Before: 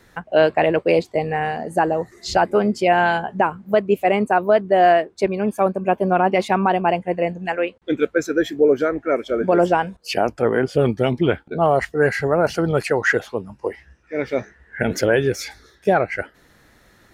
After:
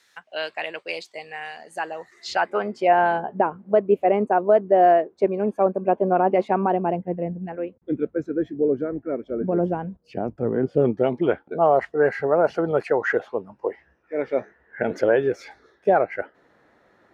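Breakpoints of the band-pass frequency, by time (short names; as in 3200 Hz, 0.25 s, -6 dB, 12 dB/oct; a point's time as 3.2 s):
band-pass, Q 0.76
1.54 s 4900 Hz
2.44 s 1800 Hz
3.19 s 450 Hz
6.6 s 450 Hz
7.2 s 160 Hz
10.47 s 160 Hz
11.15 s 630 Hz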